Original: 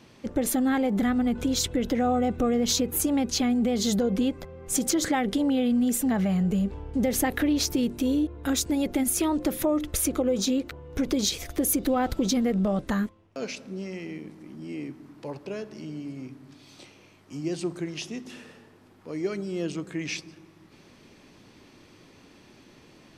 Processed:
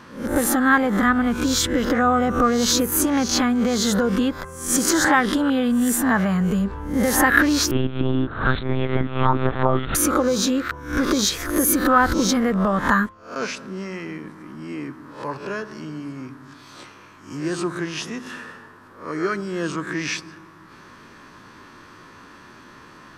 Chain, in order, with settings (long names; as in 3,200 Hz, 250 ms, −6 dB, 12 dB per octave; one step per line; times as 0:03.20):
peak hold with a rise ahead of every peak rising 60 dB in 0.44 s
flat-topped bell 1,300 Hz +12.5 dB 1.1 octaves
0:07.71–0:09.95: one-pitch LPC vocoder at 8 kHz 130 Hz
level +3.5 dB